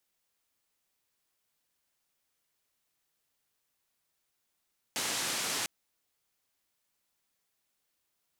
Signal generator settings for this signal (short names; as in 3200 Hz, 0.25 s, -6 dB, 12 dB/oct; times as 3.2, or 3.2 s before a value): noise band 150–8500 Hz, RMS -33.5 dBFS 0.70 s